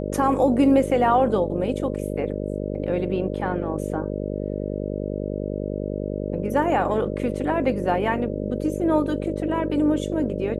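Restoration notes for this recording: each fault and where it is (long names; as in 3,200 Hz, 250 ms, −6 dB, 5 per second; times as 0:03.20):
mains buzz 50 Hz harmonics 12 −28 dBFS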